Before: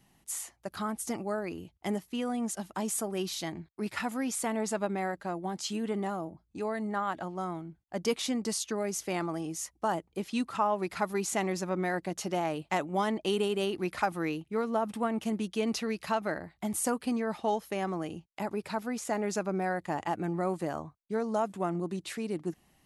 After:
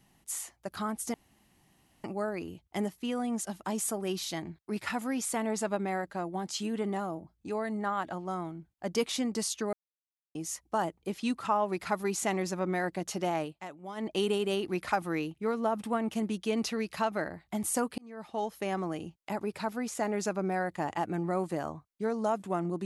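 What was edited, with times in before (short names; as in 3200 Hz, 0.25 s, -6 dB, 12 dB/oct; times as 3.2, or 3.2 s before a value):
1.14 insert room tone 0.90 s
8.83–9.45 mute
12.52–13.18 dip -13 dB, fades 0.13 s
17.08–17.75 fade in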